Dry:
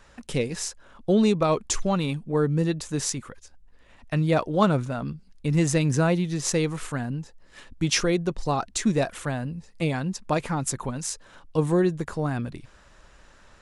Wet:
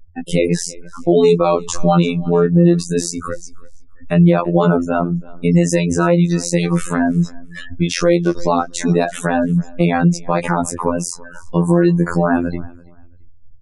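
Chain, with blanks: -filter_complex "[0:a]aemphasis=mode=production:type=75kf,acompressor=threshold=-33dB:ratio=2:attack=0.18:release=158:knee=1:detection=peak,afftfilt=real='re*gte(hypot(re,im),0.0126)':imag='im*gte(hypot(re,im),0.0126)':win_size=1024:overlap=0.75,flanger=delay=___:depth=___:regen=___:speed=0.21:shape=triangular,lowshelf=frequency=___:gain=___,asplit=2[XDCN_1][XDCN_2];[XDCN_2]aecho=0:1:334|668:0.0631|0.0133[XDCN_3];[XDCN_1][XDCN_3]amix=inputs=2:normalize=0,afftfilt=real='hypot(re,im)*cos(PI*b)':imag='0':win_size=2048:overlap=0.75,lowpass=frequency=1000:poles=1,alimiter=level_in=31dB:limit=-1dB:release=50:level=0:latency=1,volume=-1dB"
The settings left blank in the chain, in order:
4.6, 8.5, 23, 160, -8.5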